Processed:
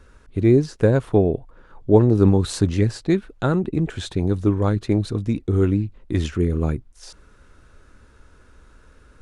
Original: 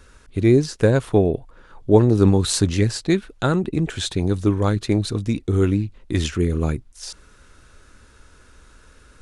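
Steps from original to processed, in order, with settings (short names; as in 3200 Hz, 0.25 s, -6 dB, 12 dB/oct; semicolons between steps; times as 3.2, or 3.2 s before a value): high shelf 2200 Hz -9.5 dB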